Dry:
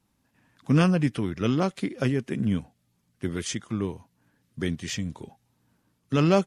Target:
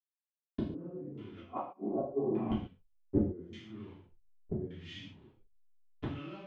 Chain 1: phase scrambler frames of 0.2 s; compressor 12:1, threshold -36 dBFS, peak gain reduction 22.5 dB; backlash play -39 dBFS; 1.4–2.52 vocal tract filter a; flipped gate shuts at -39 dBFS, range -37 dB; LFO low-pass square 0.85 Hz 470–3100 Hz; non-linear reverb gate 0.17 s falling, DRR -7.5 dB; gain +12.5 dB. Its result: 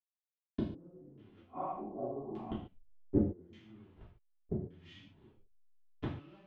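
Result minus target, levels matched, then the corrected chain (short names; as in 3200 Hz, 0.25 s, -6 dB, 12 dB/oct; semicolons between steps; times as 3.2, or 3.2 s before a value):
compressor: peak gain reduction +10.5 dB
phase scrambler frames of 0.2 s; compressor 12:1, threshold -24.5 dBFS, peak gain reduction 12 dB; backlash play -39 dBFS; 1.4–2.52 vocal tract filter a; flipped gate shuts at -39 dBFS, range -37 dB; LFO low-pass square 0.85 Hz 470–3100 Hz; non-linear reverb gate 0.17 s falling, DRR -7.5 dB; gain +12.5 dB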